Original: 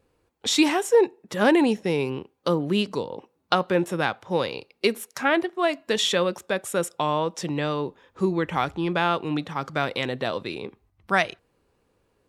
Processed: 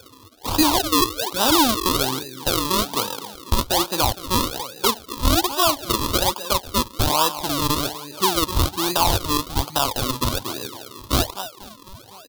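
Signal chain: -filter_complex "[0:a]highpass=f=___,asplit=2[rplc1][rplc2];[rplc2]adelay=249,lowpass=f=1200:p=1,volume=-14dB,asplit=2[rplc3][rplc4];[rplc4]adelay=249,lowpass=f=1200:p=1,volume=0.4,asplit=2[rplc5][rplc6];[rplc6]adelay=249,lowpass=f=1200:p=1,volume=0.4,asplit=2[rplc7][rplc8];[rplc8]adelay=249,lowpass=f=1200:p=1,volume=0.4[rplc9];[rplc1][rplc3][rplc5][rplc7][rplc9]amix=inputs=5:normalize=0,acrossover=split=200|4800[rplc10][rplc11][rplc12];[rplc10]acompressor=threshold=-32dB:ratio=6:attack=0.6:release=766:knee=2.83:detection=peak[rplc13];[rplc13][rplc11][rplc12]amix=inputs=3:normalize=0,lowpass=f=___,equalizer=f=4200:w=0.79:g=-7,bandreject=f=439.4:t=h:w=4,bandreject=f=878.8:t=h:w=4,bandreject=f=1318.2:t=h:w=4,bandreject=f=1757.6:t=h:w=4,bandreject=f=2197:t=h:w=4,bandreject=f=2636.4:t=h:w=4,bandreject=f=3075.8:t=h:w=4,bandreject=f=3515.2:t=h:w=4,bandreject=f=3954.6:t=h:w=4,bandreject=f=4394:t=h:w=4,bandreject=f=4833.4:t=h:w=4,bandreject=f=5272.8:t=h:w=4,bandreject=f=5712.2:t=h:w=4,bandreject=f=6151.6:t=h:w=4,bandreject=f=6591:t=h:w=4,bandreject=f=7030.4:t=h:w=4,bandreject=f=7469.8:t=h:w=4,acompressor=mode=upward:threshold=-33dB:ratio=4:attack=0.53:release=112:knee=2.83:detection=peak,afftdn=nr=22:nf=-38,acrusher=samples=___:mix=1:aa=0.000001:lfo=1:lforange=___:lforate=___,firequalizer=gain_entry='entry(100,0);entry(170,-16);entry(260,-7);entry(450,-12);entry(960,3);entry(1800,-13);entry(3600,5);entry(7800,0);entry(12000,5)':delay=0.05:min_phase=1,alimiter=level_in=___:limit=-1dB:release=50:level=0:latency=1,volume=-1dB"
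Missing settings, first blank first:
110, 8600, 40, 40, 1.2, 11.5dB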